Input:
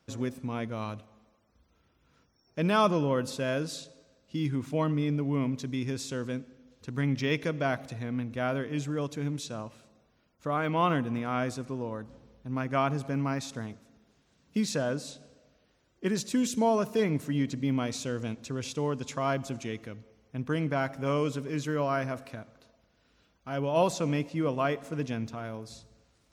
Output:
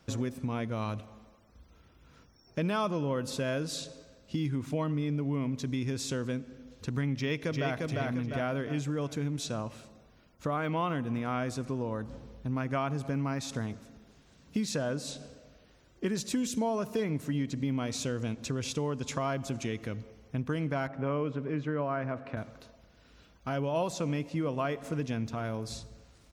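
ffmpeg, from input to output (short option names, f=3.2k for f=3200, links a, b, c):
-filter_complex "[0:a]asplit=2[a][b];[b]afade=t=in:st=7.15:d=0.01,afade=t=out:st=7.79:d=0.01,aecho=0:1:350|700|1050|1400|1750:0.668344|0.267338|0.106935|0.042774|0.0171096[c];[a][c]amix=inputs=2:normalize=0,asettb=1/sr,asplit=3[d][e][f];[d]atrim=end=20.874[g];[e]atrim=start=20.87:end=22.37,asetpts=PTS-STARTPTS,afade=t=in:d=0.004:c=qsin,afade=t=out:st=1.496:d=0.004:c=qsin,highpass=100,lowpass=2.1k[h];[f]atrim=start=22.366[i];[g][h]acrossfade=d=0.004:c1=hsin:c2=qsin[j];[j][i]acrossfade=d=0.004:c1=qsin:c2=hsin,lowshelf=f=67:g=8.5,acompressor=threshold=-38dB:ratio=3,volume=6.5dB"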